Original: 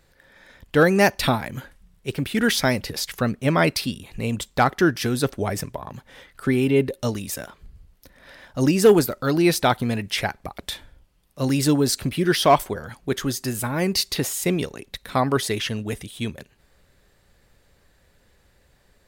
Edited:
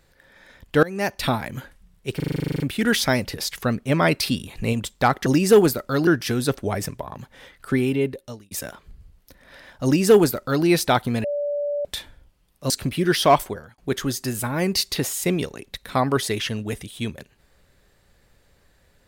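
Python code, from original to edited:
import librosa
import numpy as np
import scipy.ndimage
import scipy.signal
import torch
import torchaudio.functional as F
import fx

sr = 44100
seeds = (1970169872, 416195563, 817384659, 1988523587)

y = fx.edit(x, sr, fx.fade_in_from(start_s=0.83, length_s=0.59, floor_db=-20.0),
    fx.stutter(start_s=2.16, slice_s=0.04, count=12),
    fx.clip_gain(start_s=3.79, length_s=0.5, db=3.5),
    fx.fade_out_span(start_s=6.49, length_s=0.77),
    fx.duplicate(start_s=8.59, length_s=0.81, to_s=4.82),
    fx.bleep(start_s=9.99, length_s=0.61, hz=580.0, db=-22.0),
    fx.cut(start_s=11.45, length_s=0.45),
    fx.fade_out_span(start_s=12.65, length_s=0.33), tone=tone)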